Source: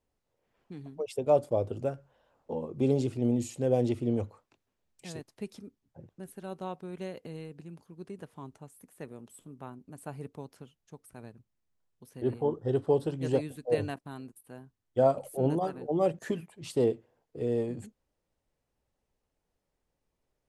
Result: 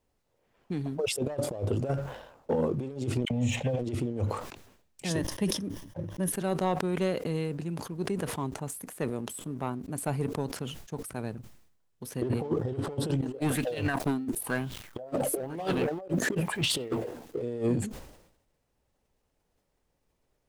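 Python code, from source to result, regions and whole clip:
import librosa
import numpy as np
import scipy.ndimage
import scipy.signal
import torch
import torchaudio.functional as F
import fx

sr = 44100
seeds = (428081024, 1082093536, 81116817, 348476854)

y = fx.chain(x, sr, fx.lowpass(hz=5700.0, slope=24),
    fx.fixed_phaser(hz=1300.0, stages=6),
    fx.dispersion(late='lows', ms=54.0, hz=1700.0), at=(3.25, 3.79))
y = fx.chain(y, sr, fx.ripple_eq(per_octave=1.2, db=9),
    fx.sustainer(db_per_s=150.0), at=(5.1, 6.32))
y = fx.chain(y, sr, fx.law_mismatch(coded='mu'),
    fx.bell_lfo(hz=1.0, low_hz=250.0, high_hz=3400.0, db=14), at=(13.22, 17.42))
y = fx.over_compress(y, sr, threshold_db=-34.0, ratio=-0.5)
y = fx.leveller(y, sr, passes=1)
y = fx.sustainer(y, sr, db_per_s=70.0)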